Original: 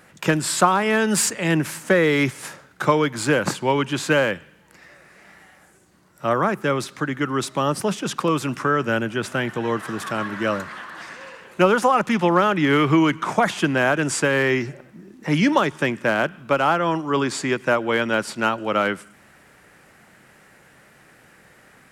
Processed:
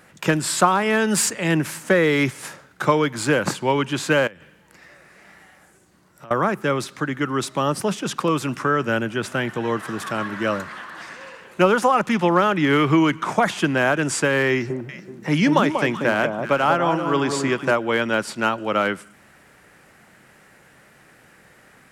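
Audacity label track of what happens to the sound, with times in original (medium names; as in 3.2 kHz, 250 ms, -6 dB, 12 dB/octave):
4.270000	6.310000	compression 16:1, threshold -37 dBFS
14.510000	17.710000	echo whose repeats swap between lows and highs 189 ms, split 1.1 kHz, feedback 51%, level -5 dB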